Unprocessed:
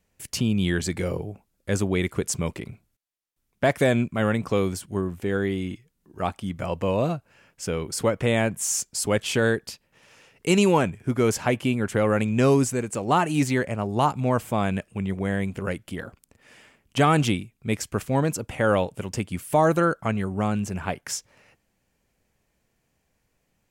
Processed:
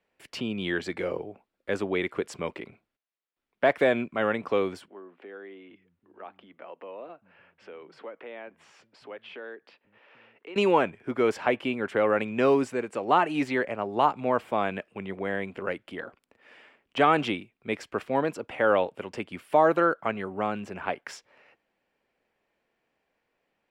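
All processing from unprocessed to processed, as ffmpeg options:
-filter_complex "[0:a]asettb=1/sr,asplit=3[a][b][c];[a]atrim=end=4.884[d];[b]atrim=start=4.88:end=10.56,asetpts=PTS-STARTPTS,afade=t=in:d=0.004:c=qsin,afade=t=out:st=5.676:d=0.004:c=qsin,acrossover=split=200 3800:gain=0.224 1 0.0631[e][f][g];[e][f][g]amix=inputs=3:normalize=0,acompressor=threshold=-49dB:ratio=2:attack=3.2:release=140:knee=1:detection=peak,acrossover=split=160[h][i];[h]adelay=790[j];[j][i]amix=inputs=2:normalize=0,atrim=end_sample=250488[k];[c]atrim=start=10.556[l];[d][k]acrossfade=d=0.004:c1=hsin:c2=qsin[m];[m][l]acrossfade=d=0.004:c1=qsin:c2=hsin,acrossover=split=270 3800:gain=0.112 1 0.0891[n][o][p];[n][o][p]amix=inputs=3:normalize=0,bandreject=f=6.4k:w=16"

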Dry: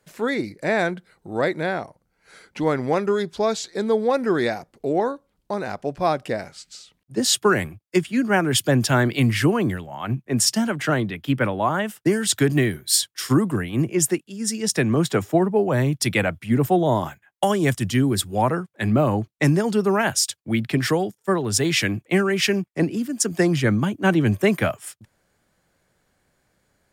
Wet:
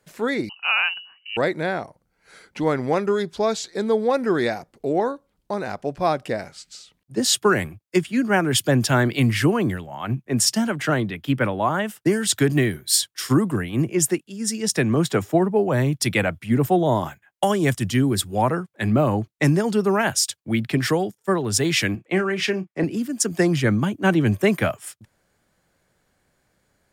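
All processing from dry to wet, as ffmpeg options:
-filter_complex "[0:a]asettb=1/sr,asplit=3[a][b][c];[a]atrim=end=0.494[d];[b]atrim=start=0.49:end=1.37,asetpts=PTS-STARTPTS,afade=t=in:d=0.004:c=qsin,afade=t=out:st=0.876:d=0.004:c=qsin,bandreject=f=184.4:t=h:w=4,bandreject=f=368.8:t=h:w=4,lowpass=f=2.6k:t=q:w=0.5098,lowpass=f=2.6k:t=q:w=0.6013,lowpass=f=2.6k:t=q:w=0.9,lowpass=f=2.6k:t=q:w=2.563,afreqshift=-3100[e];[c]atrim=start=1.366[f];[d][e]acrossfade=d=0.004:c1=hsin:c2=qsin[g];[g][f]acrossfade=d=0.004:c1=qsin:c2=hsin,asettb=1/sr,asplit=3[h][i][j];[h]atrim=end=21.954[k];[i]atrim=start=21.95:end=22.84,asetpts=PTS-STARTPTS,afade=t=in:d=0.004:c=qsin,afade=t=out:st=0.886:d=0.004:c=qsin,highpass=f=230:p=1,aemphasis=mode=reproduction:type=50kf,asplit=2[l][m];[m]adelay=32,volume=-13dB[n];[l][n]amix=inputs=2:normalize=0,atrim=end_sample=39249[o];[j]atrim=start=22.836[p];[k][o]acrossfade=d=0.004:c1=hsin:c2=qsin[q];[q][p]acrossfade=d=0.004:c1=qsin:c2=hsin"

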